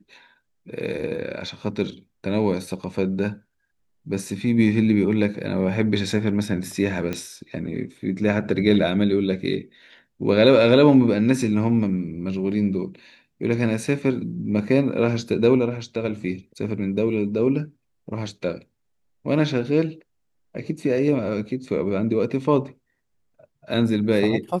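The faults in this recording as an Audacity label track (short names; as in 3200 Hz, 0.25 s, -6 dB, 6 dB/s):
7.130000	7.130000	pop -14 dBFS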